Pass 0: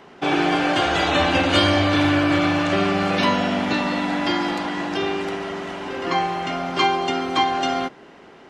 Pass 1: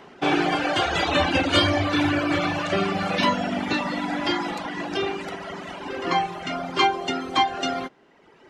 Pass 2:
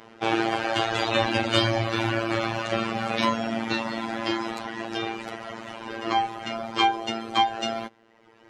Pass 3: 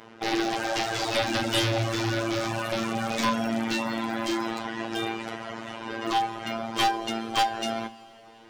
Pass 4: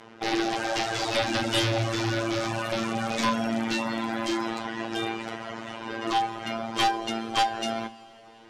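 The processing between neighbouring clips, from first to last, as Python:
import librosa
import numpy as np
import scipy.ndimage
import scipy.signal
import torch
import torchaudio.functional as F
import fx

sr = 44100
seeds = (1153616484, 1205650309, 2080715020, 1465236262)

y1 = fx.dereverb_blind(x, sr, rt60_s=1.4)
y2 = fx.robotise(y1, sr, hz=113.0)
y3 = 10.0 ** (-15.5 / 20.0) * (np.abs((y2 / 10.0 ** (-15.5 / 20.0) + 3.0) % 4.0 - 2.0) - 1.0)
y3 = fx.rev_double_slope(y3, sr, seeds[0], early_s=0.3, late_s=4.4, knee_db=-18, drr_db=12.0)
y4 = scipy.signal.sosfilt(scipy.signal.butter(2, 11000.0, 'lowpass', fs=sr, output='sos'), y3)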